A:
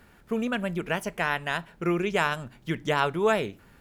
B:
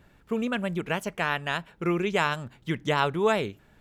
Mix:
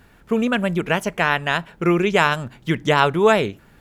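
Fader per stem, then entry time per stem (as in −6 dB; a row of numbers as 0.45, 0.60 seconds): +1.5, +3.0 decibels; 0.00, 0.00 seconds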